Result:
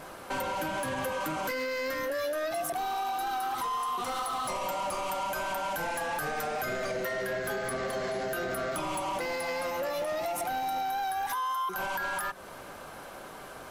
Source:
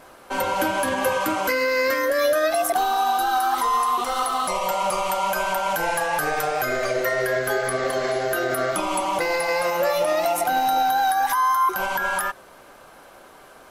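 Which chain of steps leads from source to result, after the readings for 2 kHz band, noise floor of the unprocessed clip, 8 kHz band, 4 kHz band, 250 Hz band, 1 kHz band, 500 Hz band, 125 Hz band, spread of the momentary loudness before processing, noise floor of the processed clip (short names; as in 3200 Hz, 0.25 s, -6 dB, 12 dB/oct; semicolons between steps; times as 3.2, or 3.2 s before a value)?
-9.5 dB, -48 dBFS, -9.5 dB, -9.0 dB, -8.5 dB, -10.0 dB, -10.0 dB, -5.5 dB, 4 LU, -45 dBFS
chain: octaver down 1 oct, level -4 dB; compressor 6:1, threshold -30 dBFS, peak gain reduction 12.5 dB; soft clip -29.5 dBFS, distortion -15 dB; gain +2.5 dB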